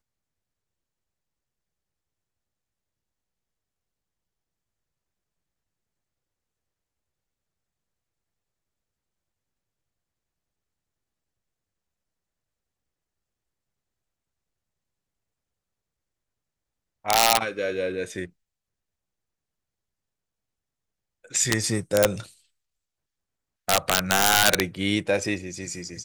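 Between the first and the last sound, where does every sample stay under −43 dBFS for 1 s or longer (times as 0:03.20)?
0:18.27–0:21.24
0:22.32–0:23.68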